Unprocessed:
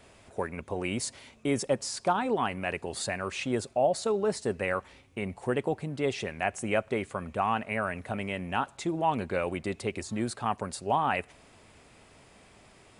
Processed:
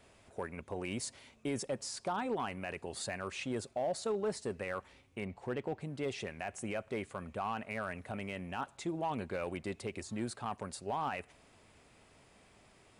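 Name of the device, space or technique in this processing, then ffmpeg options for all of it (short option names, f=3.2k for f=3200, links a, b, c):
limiter into clipper: -filter_complex "[0:a]asettb=1/sr,asplit=3[a][b][c];[a]atrim=end=5.254[d];[b]atrim=start=5.25:end=5.81,asetpts=PTS-STARTPTS,afade=t=in:d=0.004:c=qsin,afade=t=out:st=0.556:d=0.004:c=qsin,lowpass=5.4k[e];[c]atrim=start=5.806[f];[d][e]acrossfade=d=0.004:c1=hsin:c2=qsin[g];[g][f]acrossfade=d=0.004:c1=qsin:c2=hsin,alimiter=limit=-19.5dB:level=0:latency=1:release=20,asoftclip=type=hard:threshold=-21.5dB,volume=-6.5dB"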